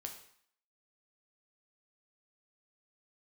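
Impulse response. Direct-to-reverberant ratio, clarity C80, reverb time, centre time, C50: 3.0 dB, 11.0 dB, 0.60 s, 18 ms, 8.0 dB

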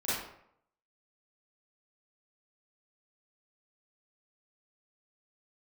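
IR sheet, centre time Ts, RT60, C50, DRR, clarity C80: 75 ms, 0.70 s, -2.5 dB, -12.5 dB, 3.0 dB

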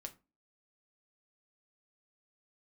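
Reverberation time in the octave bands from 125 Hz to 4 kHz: 0.30, 0.45, 0.30, 0.30, 0.25, 0.20 s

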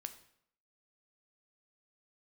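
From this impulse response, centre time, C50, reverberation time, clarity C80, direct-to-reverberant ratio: 7 ms, 13.0 dB, 0.70 s, 16.0 dB, 8.5 dB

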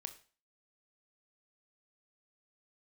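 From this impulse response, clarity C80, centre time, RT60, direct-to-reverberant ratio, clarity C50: 17.5 dB, 7 ms, 0.40 s, 8.0 dB, 13.5 dB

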